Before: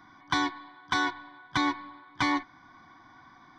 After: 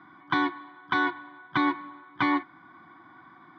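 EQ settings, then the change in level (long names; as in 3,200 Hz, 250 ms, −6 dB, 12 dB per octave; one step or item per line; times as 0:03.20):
loudspeaker in its box 110–3,400 Hz, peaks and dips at 170 Hz +5 dB, 340 Hz +8 dB, 1,300 Hz +6 dB
0.0 dB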